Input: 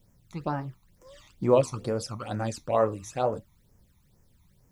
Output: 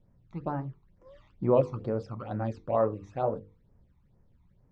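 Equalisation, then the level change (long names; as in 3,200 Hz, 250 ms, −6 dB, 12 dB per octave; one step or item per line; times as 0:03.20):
low-pass filter 1,000 Hz 6 dB per octave
high-frequency loss of the air 130 metres
mains-hum notches 50/100/150/200/250/300/350/400/450/500 Hz
0.0 dB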